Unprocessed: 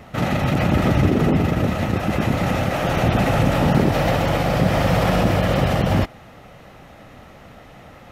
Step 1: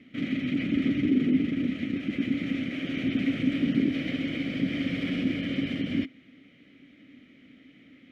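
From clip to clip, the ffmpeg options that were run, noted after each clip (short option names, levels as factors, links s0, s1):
-filter_complex "[0:a]asplit=3[s0][s1][s2];[s0]bandpass=f=270:t=q:w=8,volume=1[s3];[s1]bandpass=f=2290:t=q:w=8,volume=0.501[s4];[s2]bandpass=f=3010:t=q:w=8,volume=0.355[s5];[s3][s4][s5]amix=inputs=3:normalize=0,volume=1.41"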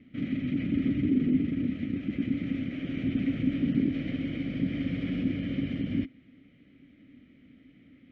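-af "aemphasis=mode=reproduction:type=bsi,volume=0.501"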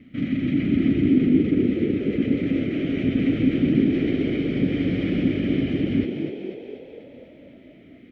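-filter_complex "[0:a]asplit=9[s0][s1][s2][s3][s4][s5][s6][s7][s8];[s1]adelay=246,afreqshift=49,volume=0.501[s9];[s2]adelay=492,afreqshift=98,volume=0.292[s10];[s3]adelay=738,afreqshift=147,volume=0.168[s11];[s4]adelay=984,afreqshift=196,volume=0.0977[s12];[s5]adelay=1230,afreqshift=245,volume=0.0569[s13];[s6]adelay=1476,afreqshift=294,volume=0.0327[s14];[s7]adelay=1722,afreqshift=343,volume=0.0191[s15];[s8]adelay=1968,afreqshift=392,volume=0.0111[s16];[s0][s9][s10][s11][s12][s13][s14][s15][s16]amix=inputs=9:normalize=0,volume=2.11"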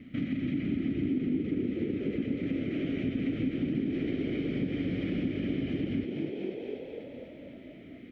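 -af "acompressor=threshold=0.0282:ratio=3"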